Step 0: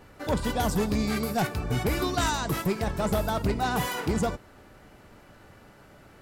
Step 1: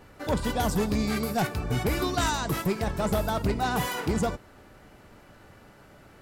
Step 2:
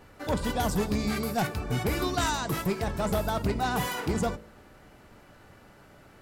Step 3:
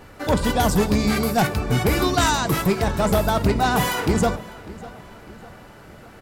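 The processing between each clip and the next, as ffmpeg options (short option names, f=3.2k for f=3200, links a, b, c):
-af anull
-af "bandreject=f=53.96:t=h:w=4,bandreject=f=107.92:t=h:w=4,bandreject=f=161.88:t=h:w=4,bandreject=f=215.84:t=h:w=4,bandreject=f=269.8:t=h:w=4,bandreject=f=323.76:t=h:w=4,bandreject=f=377.72:t=h:w=4,bandreject=f=431.68:t=h:w=4,bandreject=f=485.64:t=h:w=4,bandreject=f=539.6:t=h:w=4,bandreject=f=593.56:t=h:w=4,volume=-1dB"
-filter_complex "[0:a]asplit=2[a][b];[b]adelay=601,lowpass=f=4.8k:p=1,volume=-19dB,asplit=2[c][d];[d]adelay=601,lowpass=f=4.8k:p=1,volume=0.52,asplit=2[e][f];[f]adelay=601,lowpass=f=4.8k:p=1,volume=0.52,asplit=2[g][h];[h]adelay=601,lowpass=f=4.8k:p=1,volume=0.52[i];[a][c][e][g][i]amix=inputs=5:normalize=0,volume=8.5dB"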